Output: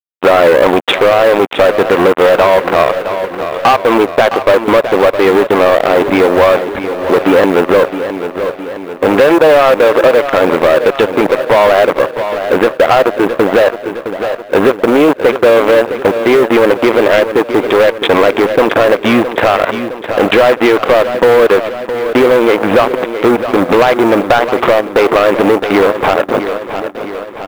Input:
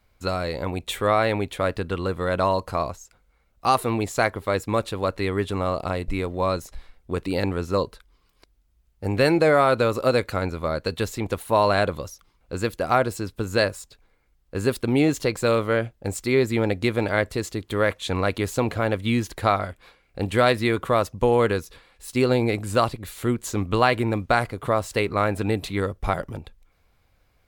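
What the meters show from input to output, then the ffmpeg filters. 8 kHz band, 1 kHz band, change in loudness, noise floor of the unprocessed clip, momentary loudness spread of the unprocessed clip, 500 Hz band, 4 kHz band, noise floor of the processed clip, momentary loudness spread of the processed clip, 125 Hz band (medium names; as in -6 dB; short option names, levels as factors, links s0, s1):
no reading, +13.0 dB, +13.5 dB, -64 dBFS, 9 LU, +16.0 dB, +12.5 dB, -26 dBFS, 9 LU, +0.5 dB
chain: -af "equalizer=f=560:w=1.6:g=5.5,acompressor=threshold=0.0631:ratio=12,aresample=8000,acrusher=bits=4:mix=0:aa=0.5,aresample=44100,highpass=310,lowpass=2400,asoftclip=type=tanh:threshold=0.0422,acrusher=bits=7:mode=log:mix=0:aa=0.000001,aecho=1:1:663|1326|1989|2652|3315|3978:0.211|0.118|0.0663|0.0371|0.0208|0.0116,acontrast=83,alimiter=level_in=14.1:limit=0.891:release=50:level=0:latency=1,volume=0.891"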